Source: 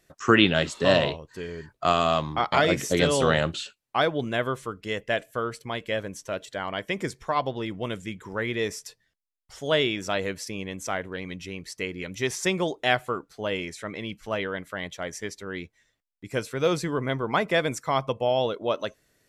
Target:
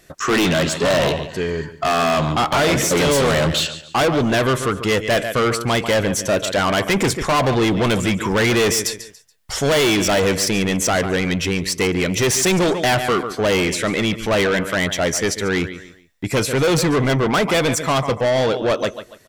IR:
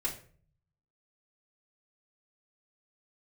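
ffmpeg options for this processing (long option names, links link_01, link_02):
-filter_complex "[0:a]dynaudnorm=framelen=340:gausssize=17:maxgain=10dB,asplit=2[link_01][link_02];[link_02]alimiter=limit=-12dB:level=0:latency=1:release=38,volume=-1dB[link_03];[link_01][link_03]amix=inputs=2:normalize=0,asoftclip=type=hard:threshold=-9dB,aecho=1:1:142|284|426:0.15|0.0464|0.0144,asoftclip=type=tanh:threshold=-22.5dB,volume=8.5dB"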